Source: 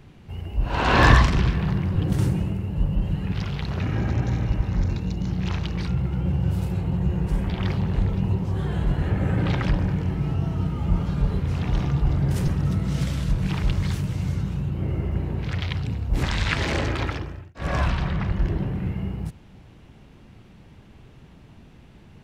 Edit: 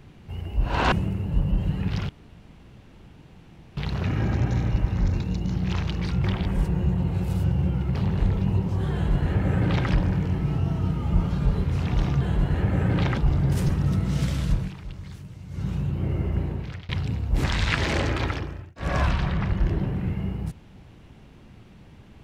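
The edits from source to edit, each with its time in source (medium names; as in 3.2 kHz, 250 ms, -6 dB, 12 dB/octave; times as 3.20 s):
0.92–2.36 s: delete
3.53 s: insert room tone 1.68 s
6.00–7.71 s: reverse
8.69–9.66 s: copy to 11.97 s
13.33–14.48 s: dip -14.5 dB, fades 0.19 s
15.22–15.68 s: fade out, to -23.5 dB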